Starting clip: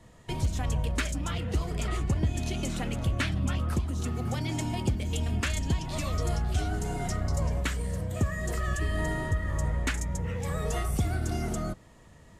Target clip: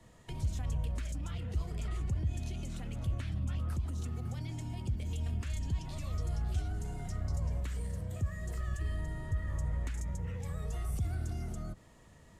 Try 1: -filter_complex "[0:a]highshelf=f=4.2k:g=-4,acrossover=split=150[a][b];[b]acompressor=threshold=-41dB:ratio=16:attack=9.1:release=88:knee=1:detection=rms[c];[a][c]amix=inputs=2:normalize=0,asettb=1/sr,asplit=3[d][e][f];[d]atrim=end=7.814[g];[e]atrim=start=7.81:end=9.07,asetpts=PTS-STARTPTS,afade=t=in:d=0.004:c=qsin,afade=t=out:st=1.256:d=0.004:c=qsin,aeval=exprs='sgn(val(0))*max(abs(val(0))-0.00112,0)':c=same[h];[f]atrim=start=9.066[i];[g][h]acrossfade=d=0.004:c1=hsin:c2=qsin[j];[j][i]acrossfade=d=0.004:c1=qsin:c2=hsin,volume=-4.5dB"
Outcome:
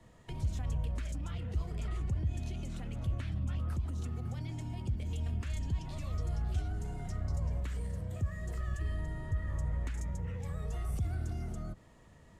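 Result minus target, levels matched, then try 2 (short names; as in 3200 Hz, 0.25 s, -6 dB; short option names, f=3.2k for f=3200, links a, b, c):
8000 Hz band -3.5 dB
-filter_complex "[0:a]highshelf=f=4.2k:g=2,acrossover=split=150[a][b];[b]acompressor=threshold=-41dB:ratio=16:attack=9.1:release=88:knee=1:detection=rms[c];[a][c]amix=inputs=2:normalize=0,asettb=1/sr,asplit=3[d][e][f];[d]atrim=end=7.814[g];[e]atrim=start=7.81:end=9.07,asetpts=PTS-STARTPTS,afade=t=in:d=0.004:c=qsin,afade=t=out:st=1.256:d=0.004:c=qsin,aeval=exprs='sgn(val(0))*max(abs(val(0))-0.00112,0)':c=same[h];[f]atrim=start=9.066[i];[g][h]acrossfade=d=0.004:c1=hsin:c2=qsin[j];[j][i]acrossfade=d=0.004:c1=qsin:c2=hsin,volume=-4.5dB"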